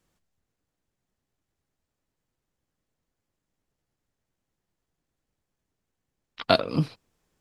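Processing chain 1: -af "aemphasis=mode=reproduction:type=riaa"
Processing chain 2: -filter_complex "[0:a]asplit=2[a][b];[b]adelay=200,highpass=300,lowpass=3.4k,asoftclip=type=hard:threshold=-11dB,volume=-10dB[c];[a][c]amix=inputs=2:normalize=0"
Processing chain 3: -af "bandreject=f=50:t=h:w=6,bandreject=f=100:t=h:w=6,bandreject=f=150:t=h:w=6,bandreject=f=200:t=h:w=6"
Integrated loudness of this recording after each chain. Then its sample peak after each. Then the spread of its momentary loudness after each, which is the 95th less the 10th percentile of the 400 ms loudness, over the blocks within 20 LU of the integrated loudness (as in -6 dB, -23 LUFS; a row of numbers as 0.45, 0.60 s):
-21.0, -25.5, -26.0 LUFS; -3.5, -1.5, -1.5 dBFS; 9, 12, 12 LU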